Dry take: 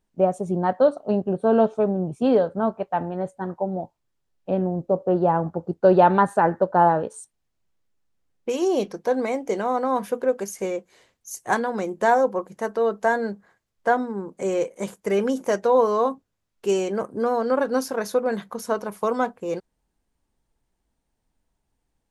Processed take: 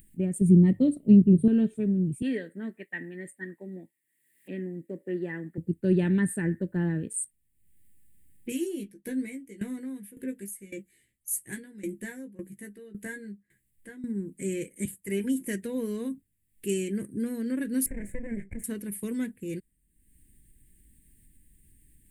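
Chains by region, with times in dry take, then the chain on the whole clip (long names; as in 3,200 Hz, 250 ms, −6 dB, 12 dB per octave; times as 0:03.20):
0:00.41–0:01.48: Butterworth band-reject 1,600 Hz, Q 2.8 + low-shelf EQ 420 Hz +11 dB + mains-hum notches 50/100/150 Hz
0:02.22–0:05.58: high-pass filter 370 Hz + parametric band 1,900 Hz +14.5 dB 0.31 octaves
0:08.50–0:14.04: double-tracking delay 15 ms −4.5 dB + tremolo with a ramp in dB decaying 1.8 Hz, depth 18 dB
0:14.85–0:15.47: parametric band 900 Hz +14 dB 0.34 octaves + notch comb filter 220 Hz + multiband upward and downward expander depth 40%
0:17.86–0:18.64: lower of the sound and its delayed copy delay 1.3 ms + drawn EQ curve 210 Hz 0 dB, 390 Hz +7 dB, 560 Hz +13 dB, 1,400 Hz −7 dB, 2,100 Hz +1 dB, 3,300 Hz −25 dB, 4,900 Hz −29 dB, 7,600 Hz −8 dB, 12,000 Hz −29 dB + downward compressor 2 to 1, threshold −23 dBFS
whole clip: drawn EQ curve 330 Hz 0 dB, 740 Hz −30 dB, 1,300 Hz −25 dB, 1,800 Hz +2 dB, 2,700 Hz −2 dB, 6,000 Hz −17 dB, 8,500 Hz +7 dB; upward compression, threshold −47 dBFS; bass and treble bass +6 dB, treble +7 dB; level −3.5 dB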